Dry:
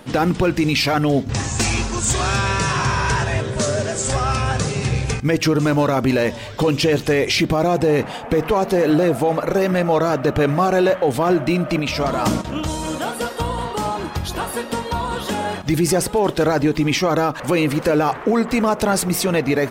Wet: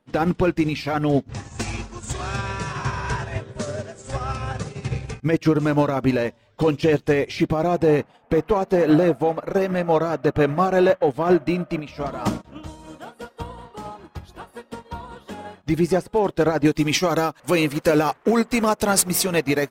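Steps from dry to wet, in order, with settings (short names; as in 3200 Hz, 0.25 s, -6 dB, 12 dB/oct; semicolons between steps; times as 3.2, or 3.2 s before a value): high shelf 3600 Hz -7 dB, from 16.65 s +6.5 dB; upward expander 2.5:1, over -32 dBFS; gain +1.5 dB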